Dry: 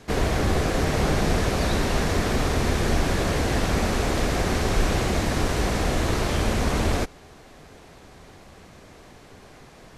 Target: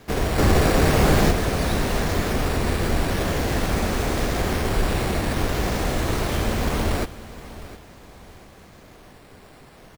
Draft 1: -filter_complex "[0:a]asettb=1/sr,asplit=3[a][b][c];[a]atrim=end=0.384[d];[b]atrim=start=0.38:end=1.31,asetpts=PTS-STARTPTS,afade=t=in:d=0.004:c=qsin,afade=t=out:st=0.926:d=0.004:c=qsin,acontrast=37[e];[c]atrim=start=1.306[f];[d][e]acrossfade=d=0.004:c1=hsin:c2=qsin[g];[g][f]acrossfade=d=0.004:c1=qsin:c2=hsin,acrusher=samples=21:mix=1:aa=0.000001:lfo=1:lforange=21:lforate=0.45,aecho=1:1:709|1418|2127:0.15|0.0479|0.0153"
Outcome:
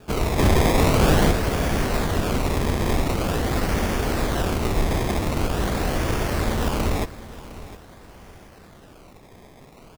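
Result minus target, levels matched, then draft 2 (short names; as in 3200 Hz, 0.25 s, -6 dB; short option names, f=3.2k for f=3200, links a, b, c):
decimation with a swept rate: distortion +8 dB
-filter_complex "[0:a]asettb=1/sr,asplit=3[a][b][c];[a]atrim=end=0.384[d];[b]atrim=start=0.38:end=1.31,asetpts=PTS-STARTPTS,afade=t=in:d=0.004:c=qsin,afade=t=out:st=0.926:d=0.004:c=qsin,acontrast=37[e];[c]atrim=start=1.306[f];[d][e]acrossfade=d=0.004:c1=hsin:c2=qsin[g];[g][f]acrossfade=d=0.004:c1=qsin:c2=hsin,acrusher=samples=5:mix=1:aa=0.000001:lfo=1:lforange=5:lforate=0.45,aecho=1:1:709|1418|2127:0.15|0.0479|0.0153"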